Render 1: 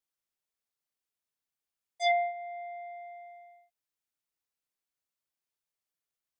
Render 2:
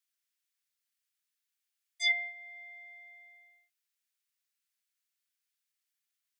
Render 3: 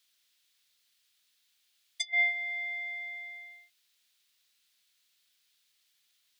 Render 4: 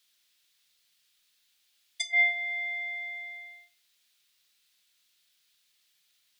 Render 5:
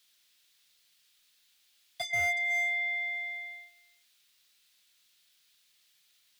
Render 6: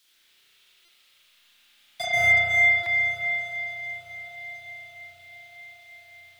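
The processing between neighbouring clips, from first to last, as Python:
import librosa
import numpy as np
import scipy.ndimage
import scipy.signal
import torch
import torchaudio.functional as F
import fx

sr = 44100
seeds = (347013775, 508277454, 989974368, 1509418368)

y1 = scipy.signal.sosfilt(scipy.signal.butter(4, 1500.0, 'highpass', fs=sr, output='sos'), x)
y1 = F.gain(torch.from_numpy(y1), 4.5).numpy()
y2 = fx.peak_eq(y1, sr, hz=3700.0, db=10.5, octaves=1.1)
y2 = fx.over_compress(y2, sr, threshold_db=-33.0, ratio=-0.5)
y2 = F.gain(torch.from_numpy(y2), 4.0).numpy()
y3 = fx.room_shoebox(y2, sr, seeds[0], volume_m3=530.0, walls='furnished', distance_m=0.9)
y3 = F.gain(torch.from_numpy(y3), 1.5).numpy()
y4 = y3 + 10.0 ** (-20.5 / 20.0) * np.pad(y3, (int(368 * sr / 1000.0), 0))[:len(y3)]
y4 = fx.slew_limit(y4, sr, full_power_hz=66.0)
y4 = F.gain(torch.from_numpy(y4), 2.5).numpy()
y5 = fx.echo_diffused(y4, sr, ms=973, feedback_pct=50, wet_db=-15.0)
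y5 = fx.rev_spring(y5, sr, rt60_s=3.3, pass_ms=(33,), chirp_ms=70, drr_db=-9.5)
y5 = fx.buffer_glitch(y5, sr, at_s=(0.85, 2.83), block=128, repeats=10)
y5 = F.gain(torch.from_numpy(y5), 3.0).numpy()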